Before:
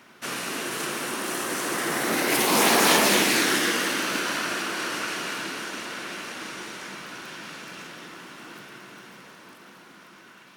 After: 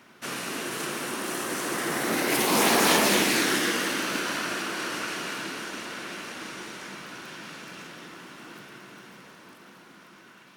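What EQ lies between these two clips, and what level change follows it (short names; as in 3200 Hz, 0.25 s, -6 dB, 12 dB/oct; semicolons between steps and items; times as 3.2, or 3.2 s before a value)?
low shelf 370 Hz +3 dB; -2.5 dB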